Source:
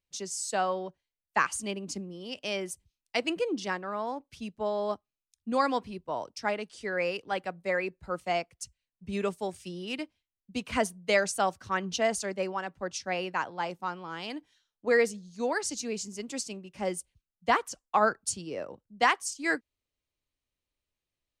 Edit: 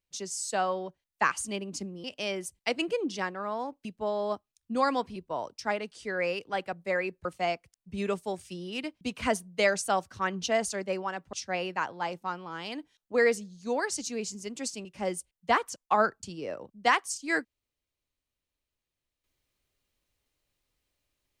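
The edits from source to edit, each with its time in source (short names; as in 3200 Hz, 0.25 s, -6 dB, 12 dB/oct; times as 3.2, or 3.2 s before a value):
shrink pauses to 30%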